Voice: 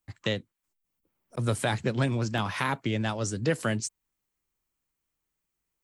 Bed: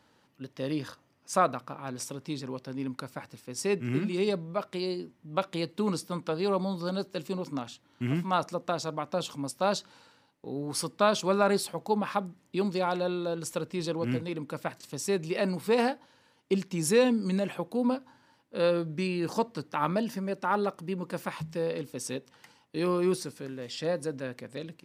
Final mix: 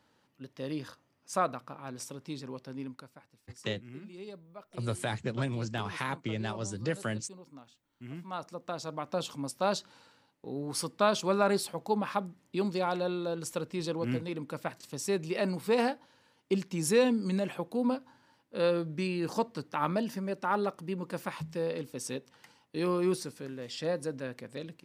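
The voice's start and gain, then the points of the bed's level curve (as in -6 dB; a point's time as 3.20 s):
3.40 s, -6.0 dB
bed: 2.79 s -4.5 dB
3.23 s -17 dB
7.86 s -17 dB
9.12 s -2 dB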